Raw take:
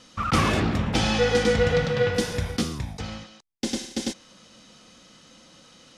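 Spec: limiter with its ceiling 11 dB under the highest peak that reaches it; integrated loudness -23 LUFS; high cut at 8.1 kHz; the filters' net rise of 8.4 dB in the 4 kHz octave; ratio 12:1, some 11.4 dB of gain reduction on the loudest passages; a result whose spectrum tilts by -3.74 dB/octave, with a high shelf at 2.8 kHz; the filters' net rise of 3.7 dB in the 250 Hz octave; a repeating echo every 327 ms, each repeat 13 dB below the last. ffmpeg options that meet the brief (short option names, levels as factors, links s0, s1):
-af "lowpass=8100,equalizer=f=250:t=o:g=4.5,highshelf=f=2800:g=8.5,equalizer=f=4000:t=o:g=4,acompressor=threshold=0.0501:ratio=12,alimiter=limit=0.0708:level=0:latency=1,aecho=1:1:327|654|981:0.224|0.0493|0.0108,volume=3.35"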